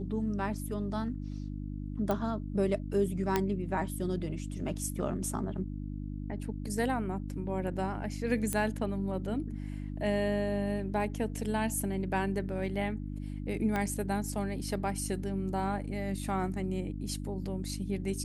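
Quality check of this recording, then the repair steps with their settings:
hum 50 Hz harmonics 6 -38 dBFS
2.11 s: pop -18 dBFS
3.36 s: pop -13 dBFS
8.53 s: pop -17 dBFS
13.76 s: pop -19 dBFS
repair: de-click; de-hum 50 Hz, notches 6

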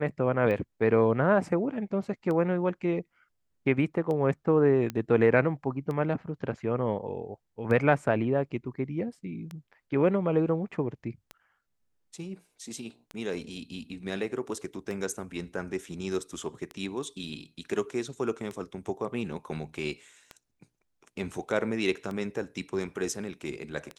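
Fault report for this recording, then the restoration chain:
tick 33 1/3 rpm -23 dBFS
4.90 s: pop -18 dBFS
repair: de-click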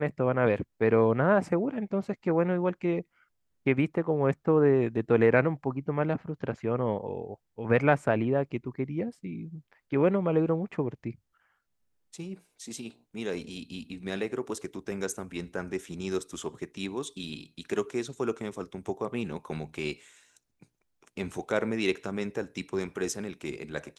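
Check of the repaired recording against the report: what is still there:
nothing left

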